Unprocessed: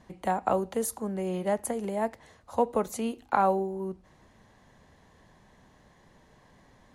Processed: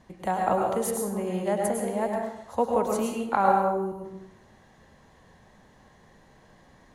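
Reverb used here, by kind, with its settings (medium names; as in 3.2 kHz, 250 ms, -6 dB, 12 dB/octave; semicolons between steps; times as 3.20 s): plate-style reverb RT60 0.83 s, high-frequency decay 0.65×, pre-delay 90 ms, DRR 0 dB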